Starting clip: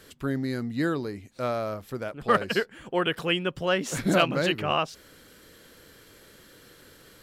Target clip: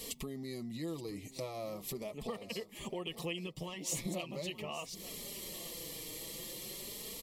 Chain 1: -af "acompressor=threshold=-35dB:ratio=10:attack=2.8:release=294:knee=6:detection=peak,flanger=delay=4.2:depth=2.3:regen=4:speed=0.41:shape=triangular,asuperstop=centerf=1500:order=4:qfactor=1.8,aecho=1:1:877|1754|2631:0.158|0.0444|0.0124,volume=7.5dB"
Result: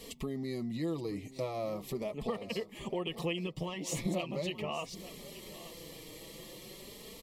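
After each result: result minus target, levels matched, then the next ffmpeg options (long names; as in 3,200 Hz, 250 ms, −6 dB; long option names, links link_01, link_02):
8,000 Hz band −7.0 dB; downward compressor: peak gain reduction −5.5 dB
-af "acompressor=threshold=-35dB:ratio=10:attack=2.8:release=294:knee=6:detection=peak,flanger=delay=4.2:depth=2.3:regen=4:speed=0.41:shape=triangular,asuperstop=centerf=1500:order=4:qfactor=1.8,highshelf=frequency=4400:gain=10.5,aecho=1:1:877|1754|2631:0.158|0.0444|0.0124,volume=7.5dB"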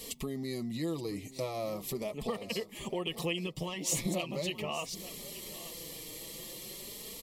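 downward compressor: peak gain reduction −5.5 dB
-af "acompressor=threshold=-41dB:ratio=10:attack=2.8:release=294:knee=6:detection=peak,flanger=delay=4.2:depth=2.3:regen=4:speed=0.41:shape=triangular,asuperstop=centerf=1500:order=4:qfactor=1.8,highshelf=frequency=4400:gain=10.5,aecho=1:1:877|1754|2631:0.158|0.0444|0.0124,volume=7.5dB"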